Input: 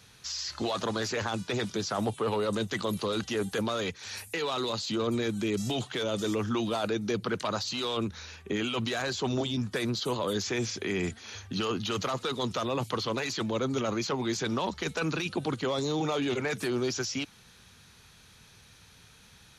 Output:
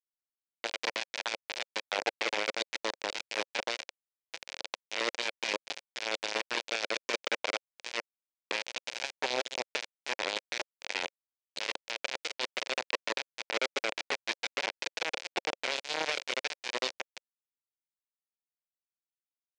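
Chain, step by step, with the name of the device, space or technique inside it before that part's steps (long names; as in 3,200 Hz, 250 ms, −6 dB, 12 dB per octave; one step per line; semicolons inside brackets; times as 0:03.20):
hand-held game console (bit reduction 4 bits; loudspeaker in its box 480–5,900 Hz, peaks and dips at 540 Hz +4 dB, 1,200 Hz −9 dB, 2,400 Hz +5 dB)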